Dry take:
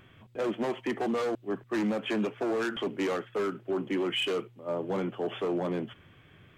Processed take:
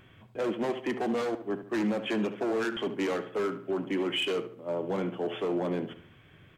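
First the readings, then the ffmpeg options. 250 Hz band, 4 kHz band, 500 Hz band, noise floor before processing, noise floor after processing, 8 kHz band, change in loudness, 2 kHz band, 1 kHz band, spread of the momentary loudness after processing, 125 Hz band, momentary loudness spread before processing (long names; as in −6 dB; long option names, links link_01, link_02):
+0.5 dB, 0.0 dB, +0.5 dB, −58 dBFS, −57 dBFS, 0.0 dB, 0.0 dB, 0.0 dB, 0.0 dB, 5 LU, 0.0 dB, 5 LU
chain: -filter_complex "[0:a]bandreject=frequency=1200:width=23,asplit=2[link_01][link_02];[link_02]adelay=72,lowpass=frequency=2600:poles=1,volume=-11dB,asplit=2[link_03][link_04];[link_04]adelay=72,lowpass=frequency=2600:poles=1,volume=0.43,asplit=2[link_05][link_06];[link_06]adelay=72,lowpass=frequency=2600:poles=1,volume=0.43,asplit=2[link_07][link_08];[link_08]adelay=72,lowpass=frequency=2600:poles=1,volume=0.43[link_09];[link_03][link_05][link_07][link_09]amix=inputs=4:normalize=0[link_10];[link_01][link_10]amix=inputs=2:normalize=0"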